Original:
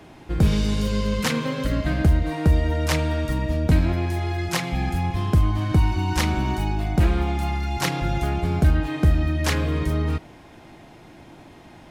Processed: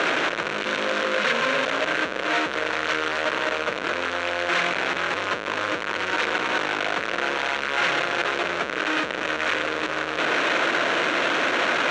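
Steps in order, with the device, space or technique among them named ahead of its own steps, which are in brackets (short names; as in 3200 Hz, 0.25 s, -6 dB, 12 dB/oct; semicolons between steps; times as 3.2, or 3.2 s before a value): 2.33–3.08 notches 50/100/150/200/250/300 Hz; air absorption 250 m; home computer beeper (infinite clipping; speaker cabinet 510–5400 Hz, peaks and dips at 520 Hz +4 dB, 810 Hz -8 dB, 1500 Hz +7 dB, 2500 Hz +3 dB, 4900 Hz -10 dB); gain +2.5 dB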